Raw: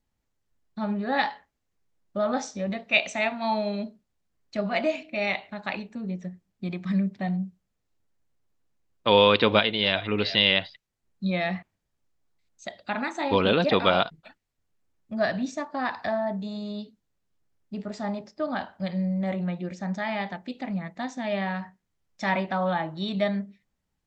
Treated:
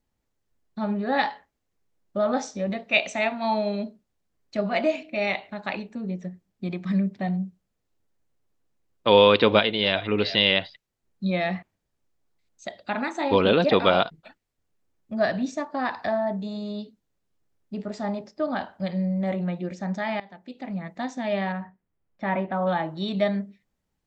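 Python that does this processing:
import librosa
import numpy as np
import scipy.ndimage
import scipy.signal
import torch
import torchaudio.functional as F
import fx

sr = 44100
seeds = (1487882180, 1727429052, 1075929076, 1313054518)

y = fx.air_absorb(x, sr, metres=470.0, at=(21.52, 22.67))
y = fx.edit(y, sr, fx.fade_in_from(start_s=20.2, length_s=0.76, floor_db=-20.0), tone=tone)
y = fx.peak_eq(y, sr, hz=420.0, db=3.5, octaves=1.7)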